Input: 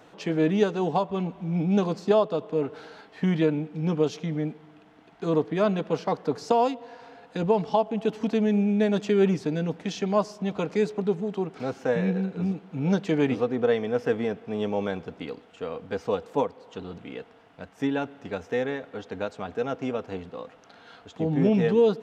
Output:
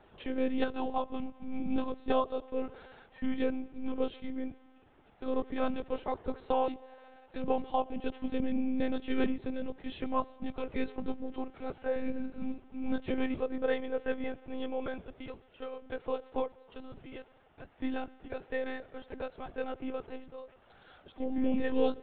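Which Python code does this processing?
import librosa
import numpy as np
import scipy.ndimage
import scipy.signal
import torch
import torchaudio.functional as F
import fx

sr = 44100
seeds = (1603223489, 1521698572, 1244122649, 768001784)

y = fx.lpc_monotone(x, sr, seeds[0], pitch_hz=260.0, order=16)
y = F.gain(torch.from_numpy(y), -7.5).numpy()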